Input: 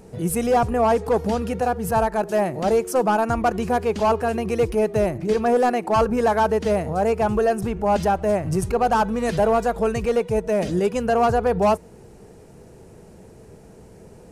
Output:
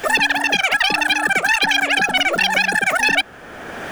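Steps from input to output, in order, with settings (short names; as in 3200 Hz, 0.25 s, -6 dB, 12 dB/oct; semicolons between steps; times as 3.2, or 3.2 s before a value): wide varispeed 3.66×; three-band squash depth 70%; gain +2.5 dB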